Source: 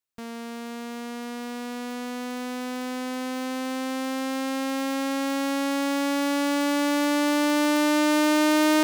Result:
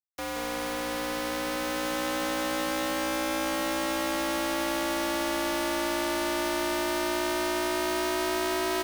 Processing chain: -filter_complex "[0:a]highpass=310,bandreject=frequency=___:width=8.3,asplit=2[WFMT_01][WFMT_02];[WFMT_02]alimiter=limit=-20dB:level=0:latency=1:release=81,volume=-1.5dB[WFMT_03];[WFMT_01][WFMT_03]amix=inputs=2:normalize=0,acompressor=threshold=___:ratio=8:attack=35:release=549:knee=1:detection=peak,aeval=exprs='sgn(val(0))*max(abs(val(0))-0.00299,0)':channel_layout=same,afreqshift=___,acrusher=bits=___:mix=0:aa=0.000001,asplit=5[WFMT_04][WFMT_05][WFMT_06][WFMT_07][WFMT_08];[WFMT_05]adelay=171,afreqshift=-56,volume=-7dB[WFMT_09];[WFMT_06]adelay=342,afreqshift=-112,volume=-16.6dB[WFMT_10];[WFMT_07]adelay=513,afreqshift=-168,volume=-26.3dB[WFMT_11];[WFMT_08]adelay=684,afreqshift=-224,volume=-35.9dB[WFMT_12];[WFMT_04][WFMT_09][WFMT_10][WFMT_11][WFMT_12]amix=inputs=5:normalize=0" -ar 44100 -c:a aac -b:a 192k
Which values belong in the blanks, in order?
7400, -25dB, 64, 5